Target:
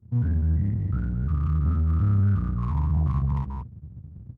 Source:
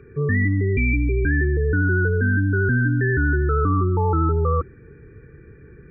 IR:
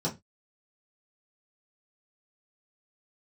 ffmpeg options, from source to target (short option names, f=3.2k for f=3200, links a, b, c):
-af "aecho=1:1:40.82|279.9:0.891|0.501,afftdn=nr=22:nf=-32,dynaudnorm=f=480:g=3:m=5.5dB,bandreject=f=790:w=25,asetrate=26990,aresample=44100,atempo=1.63392,acompressor=threshold=-23dB:ratio=2,firequalizer=gain_entry='entry(120,0);entry(200,-25);entry(740,-6);entry(1500,-29);entry(3500,4)':delay=0.05:min_phase=1,aeval=exprs='max(val(0),0)':c=same,asetrate=59535,aresample=44100,highpass=f=78:w=0.5412,highpass=f=78:w=1.3066,bass=f=250:g=10,treble=f=4k:g=2,volume=-2dB"